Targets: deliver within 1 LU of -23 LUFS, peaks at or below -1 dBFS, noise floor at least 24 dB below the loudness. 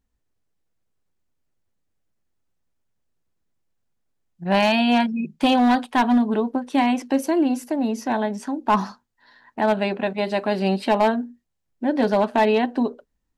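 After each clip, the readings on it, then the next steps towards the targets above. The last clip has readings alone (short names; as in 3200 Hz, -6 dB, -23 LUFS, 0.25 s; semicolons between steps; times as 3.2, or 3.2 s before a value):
clipped 0.6%; flat tops at -11.5 dBFS; loudness -21.5 LUFS; peak -11.5 dBFS; loudness target -23.0 LUFS
-> clip repair -11.5 dBFS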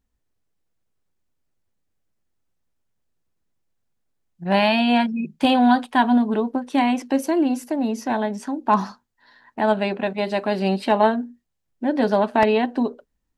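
clipped 0.0%; loudness -21.0 LUFS; peak -2.5 dBFS; loudness target -23.0 LUFS
-> gain -2 dB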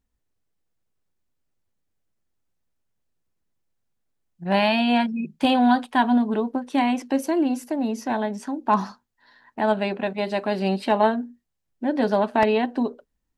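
loudness -23.0 LUFS; peak -4.5 dBFS; noise floor -77 dBFS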